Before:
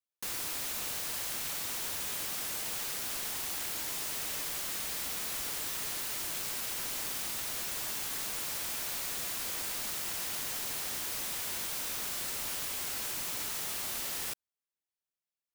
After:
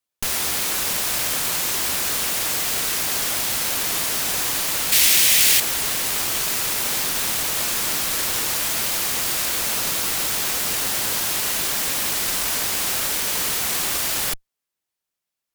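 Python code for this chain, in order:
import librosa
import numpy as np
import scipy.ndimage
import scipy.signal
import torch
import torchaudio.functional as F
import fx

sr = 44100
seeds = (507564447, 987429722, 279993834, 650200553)

y = fx.cheby_harmonics(x, sr, harmonics=(8,), levels_db=(-6,), full_scale_db=-22.5)
y = fx.high_shelf_res(y, sr, hz=1700.0, db=8.0, q=1.5, at=(4.92, 5.6))
y = y * 10.0 ** (9.0 / 20.0)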